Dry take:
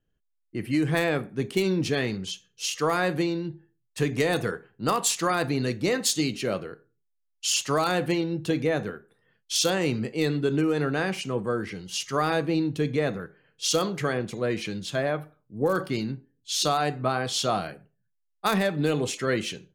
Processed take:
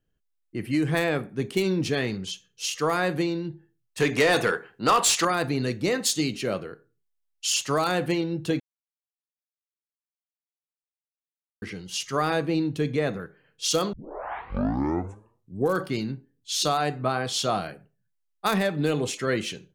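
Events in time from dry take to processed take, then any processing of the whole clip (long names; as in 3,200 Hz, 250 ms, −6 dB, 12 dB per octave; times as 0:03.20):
0:04.00–0:05.25: mid-hump overdrive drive 16 dB, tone 6,300 Hz, clips at −10.5 dBFS
0:08.60–0:11.62: silence
0:13.93: tape start 1.82 s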